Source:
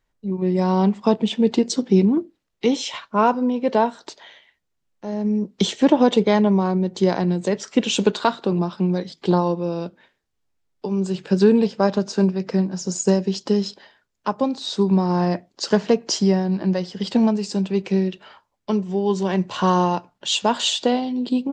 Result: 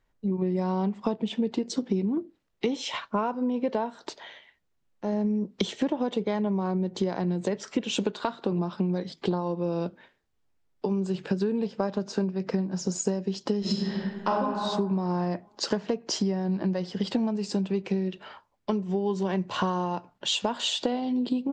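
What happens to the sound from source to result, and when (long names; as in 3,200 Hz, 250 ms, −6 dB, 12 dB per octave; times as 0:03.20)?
0:13.60–0:14.34: thrown reverb, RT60 1.4 s, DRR −11 dB
whole clip: high-shelf EQ 3,900 Hz −7 dB; downward compressor 10 to 1, threshold −25 dBFS; level +1.5 dB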